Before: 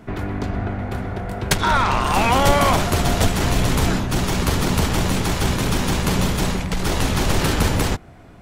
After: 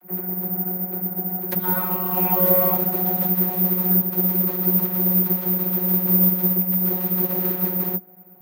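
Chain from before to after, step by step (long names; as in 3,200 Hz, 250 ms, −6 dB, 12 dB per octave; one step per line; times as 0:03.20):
thirty-one-band graphic EQ 315 Hz +11 dB, 630 Hz +8 dB, 3,150 Hz −4 dB
channel vocoder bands 32, saw 183 Hz
bad sample-rate conversion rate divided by 3×, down filtered, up zero stuff
level −6 dB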